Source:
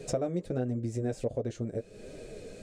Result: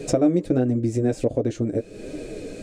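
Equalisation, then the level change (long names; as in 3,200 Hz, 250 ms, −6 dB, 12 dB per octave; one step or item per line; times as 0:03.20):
parametric band 300 Hz +12 dB 0.34 octaves
parametric band 2,400 Hz +2.5 dB 0.24 octaves
+8.0 dB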